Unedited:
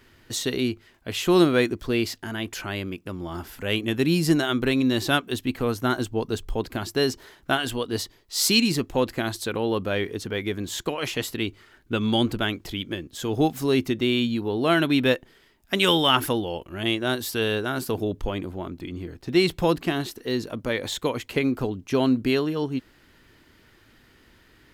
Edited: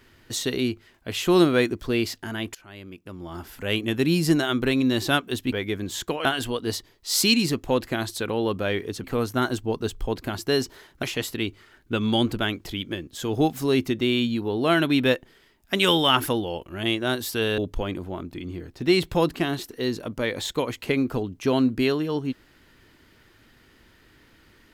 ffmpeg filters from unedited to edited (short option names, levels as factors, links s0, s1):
-filter_complex "[0:a]asplit=7[s0][s1][s2][s3][s4][s5][s6];[s0]atrim=end=2.55,asetpts=PTS-STARTPTS,afade=t=out:st=2.546:d=0.004:c=hsin:silence=0.0749894[s7];[s1]atrim=start=2.55:end=5.522,asetpts=PTS-STARTPTS,afade=t=in:d=1.16:silence=0.0749894[s8];[s2]atrim=start=10.298:end=11.032[s9];[s3]atrim=start=7.508:end=10.302[s10];[s4]atrim=start=5.518:end=7.512[s11];[s5]atrim=start=11.028:end=17.582[s12];[s6]atrim=start=18.048[s13];[s7][s8]concat=n=2:v=0:a=1[s14];[s14][s9]acrossfade=d=0.004:c1=hsin:c2=hsin[s15];[s15][s10]acrossfade=d=0.004:c1=hsin:c2=hsin[s16];[s16][s11]acrossfade=d=0.004:c1=hsin:c2=hsin[s17];[s17][s12]acrossfade=d=0.004:c1=hsin:c2=hsin[s18];[s18][s13]acrossfade=d=0.004:c1=hsin:c2=hsin"